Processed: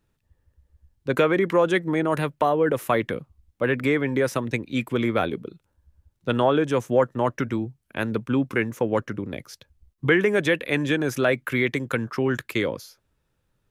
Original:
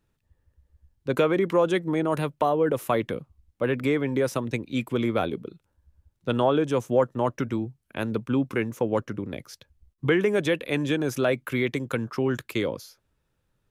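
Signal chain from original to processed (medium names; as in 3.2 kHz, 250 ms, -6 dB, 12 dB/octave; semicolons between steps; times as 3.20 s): dynamic bell 1.8 kHz, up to +6 dB, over -46 dBFS, Q 1.9; trim +1.5 dB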